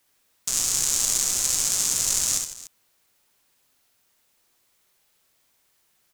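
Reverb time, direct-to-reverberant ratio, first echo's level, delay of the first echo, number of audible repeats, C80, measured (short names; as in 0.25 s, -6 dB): none, none, -6.5 dB, 66 ms, 3, none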